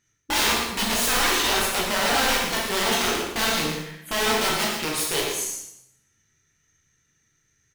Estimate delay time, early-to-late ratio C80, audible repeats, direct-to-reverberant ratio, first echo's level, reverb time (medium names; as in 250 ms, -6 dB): 117 ms, 3.0 dB, 1, -4.5 dB, -6.5 dB, 0.80 s